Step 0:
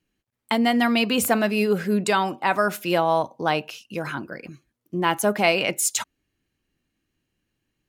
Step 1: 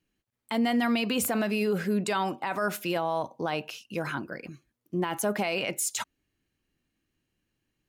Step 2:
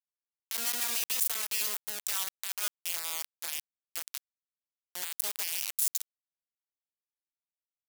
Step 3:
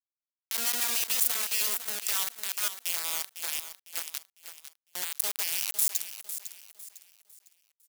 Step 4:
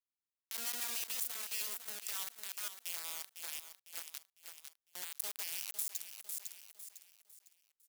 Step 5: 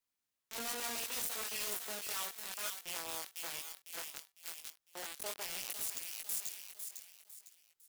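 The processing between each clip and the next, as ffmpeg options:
-af "alimiter=limit=-16.5dB:level=0:latency=1:release=38,volume=-2.5dB"
-af "acrusher=bits=3:mix=0:aa=0.000001,aderivative"
-filter_complex "[0:a]acrusher=bits=7:dc=4:mix=0:aa=0.000001,asplit=2[a][b];[b]aecho=0:1:503|1006|1509|2012:0.282|0.0986|0.0345|0.0121[c];[a][c]amix=inputs=2:normalize=0,volume=2.5dB"
-af "alimiter=limit=-19dB:level=0:latency=1:release=432,volume=-5dB"
-filter_complex "[0:a]flanger=delay=18:depth=4.7:speed=0.65,acrossover=split=440[a][b];[b]aeval=exprs='0.0158*(abs(mod(val(0)/0.0158+3,4)-2)-1)':c=same[c];[a][c]amix=inputs=2:normalize=0,volume=9.5dB"

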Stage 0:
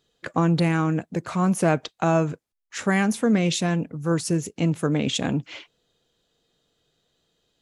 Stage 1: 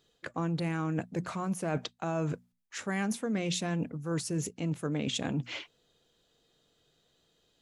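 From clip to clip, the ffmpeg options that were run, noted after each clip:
-af "bandreject=f=60:t=h:w=6,bandreject=f=120:t=h:w=6,bandreject=f=180:t=h:w=6,bandreject=f=240:t=h:w=6,areverse,acompressor=threshold=-30dB:ratio=5,areverse"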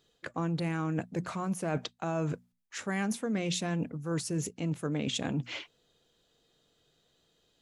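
-af anull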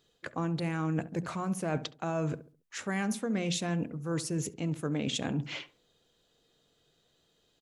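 -filter_complex "[0:a]asplit=2[a][b];[b]adelay=69,lowpass=f=1.2k:p=1,volume=-14dB,asplit=2[c][d];[d]adelay=69,lowpass=f=1.2k:p=1,volume=0.37,asplit=2[e][f];[f]adelay=69,lowpass=f=1.2k:p=1,volume=0.37,asplit=2[g][h];[h]adelay=69,lowpass=f=1.2k:p=1,volume=0.37[i];[a][c][e][g][i]amix=inputs=5:normalize=0"

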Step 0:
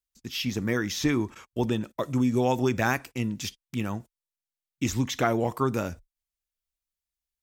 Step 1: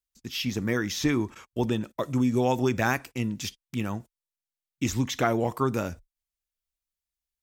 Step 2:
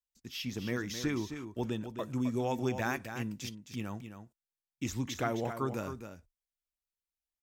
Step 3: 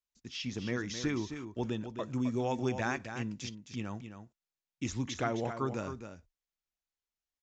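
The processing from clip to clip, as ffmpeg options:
-af anull
-af "aecho=1:1:264:0.355,volume=-8.5dB"
-af "aresample=16000,aresample=44100"

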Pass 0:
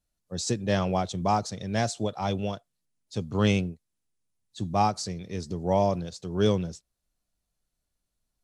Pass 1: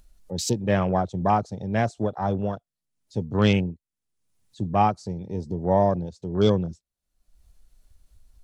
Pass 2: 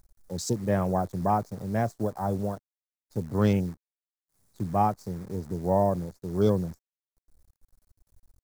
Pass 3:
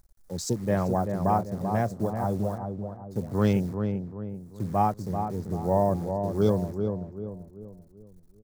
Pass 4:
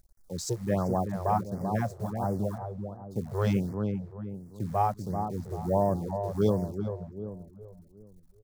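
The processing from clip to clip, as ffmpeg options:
-af "acompressor=mode=upward:threshold=-33dB:ratio=2.5,afwtdn=0.0141,volume=3.5dB"
-af "acrusher=bits=8:dc=4:mix=0:aa=0.000001,equalizer=f=2.9k:t=o:w=1:g=-13,volume=-3dB"
-filter_complex "[0:a]asplit=2[a][b];[b]adelay=388,lowpass=f=1.1k:p=1,volume=-5.5dB,asplit=2[c][d];[d]adelay=388,lowpass=f=1.1k:p=1,volume=0.44,asplit=2[e][f];[f]adelay=388,lowpass=f=1.1k:p=1,volume=0.44,asplit=2[g][h];[h]adelay=388,lowpass=f=1.1k:p=1,volume=0.44,asplit=2[i][j];[j]adelay=388,lowpass=f=1.1k:p=1,volume=0.44[k];[a][c][e][g][i][k]amix=inputs=6:normalize=0"
-af "afftfilt=real='re*(1-between(b*sr/1024,220*pow(3300/220,0.5+0.5*sin(2*PI*1.4*pts/sr))/1.41,220*pow(3300/220,0.5+0.5*sin(2*PI*1.4*pts/sr))*1.41))':imag='im*(1-between(b*sr/1024,220*pow(3300/220,0.5+0.5*sin(2*PI*1.4*pts/sr))/1.41,220*pow(3300/220,0.5+0.5*sin(2*PI*1.4*pts/sr))*1.41))':win_size=1024:overlap=0.75,volume=-2dB"

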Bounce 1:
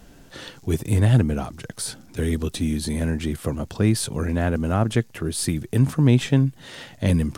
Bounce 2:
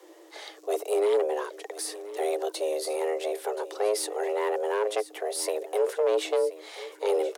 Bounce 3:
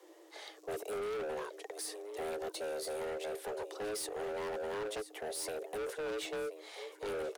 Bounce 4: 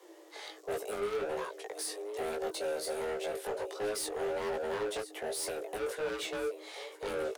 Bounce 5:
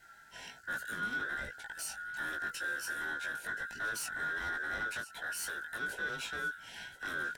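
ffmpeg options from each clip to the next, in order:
-af "aeval=exprs='(tanh(5.62*val(0)+0.15)-tanh(0.15))/5.62':c=same,afreqshift=310,aecho=1:1:1027:0.158,volume=-4dB"
-af "asoftclip=type=hard:threshold=-29.5dB,volume=-6.5dB"
-af "flanger=delay=17:depth=3.2:speed=1.3,volume=6.5dB"
-af "afftfilt=real='real(if(lt(b,960),b+48*(1-2*mod(floor(b/48),2)),b),0)':imag='imag(if(lt(b,960),b+48*(1-2*mod(floor(b/48),2)),b),0)':win_size=2048:overlap=0.75,volume=-2.5dB"

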